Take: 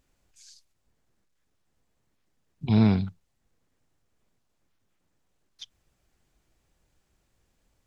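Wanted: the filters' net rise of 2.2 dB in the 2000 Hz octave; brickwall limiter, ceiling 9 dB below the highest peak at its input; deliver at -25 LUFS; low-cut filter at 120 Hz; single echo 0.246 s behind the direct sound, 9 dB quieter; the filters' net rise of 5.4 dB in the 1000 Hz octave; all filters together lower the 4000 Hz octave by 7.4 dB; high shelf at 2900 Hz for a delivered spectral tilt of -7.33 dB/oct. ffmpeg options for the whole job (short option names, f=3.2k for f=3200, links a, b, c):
-af "highpass=120,equalizer=f=1k:t=o:g=7,equalizer=f=2k:t=o:g=5,highshelf=f=2.9k:g=-7,equalizer=f=4k:t=o:g=-5.5,alimiter=limit=-19.5dB:level=0:latency=1,aecho=1:1:246:0.355,volume=6.5dB"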